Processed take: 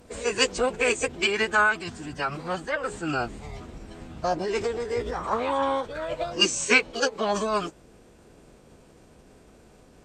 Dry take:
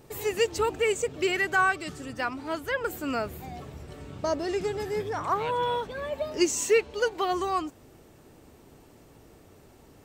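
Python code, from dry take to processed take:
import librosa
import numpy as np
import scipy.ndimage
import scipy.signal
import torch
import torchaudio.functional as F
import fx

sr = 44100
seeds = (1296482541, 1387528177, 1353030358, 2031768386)

y = fx.pitch_keep_formants(x, sr, semitones=-10.0)
y = y * 10.0 ** (2.5 / 20.0)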